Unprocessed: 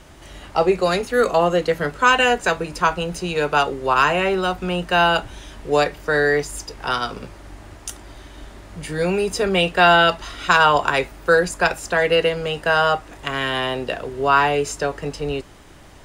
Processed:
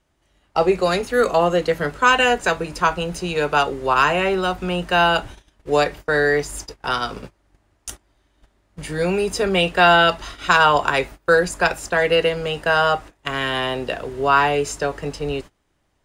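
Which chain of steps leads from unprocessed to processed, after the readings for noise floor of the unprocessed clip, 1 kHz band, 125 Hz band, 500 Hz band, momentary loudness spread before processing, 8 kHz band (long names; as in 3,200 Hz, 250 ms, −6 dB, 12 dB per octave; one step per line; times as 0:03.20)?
−44 dBFS, 0.0 dB, 0.0 dB, 0.0 dB, 13 LU, 0.0 dB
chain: noise gate −33 dBFS, range −23 dB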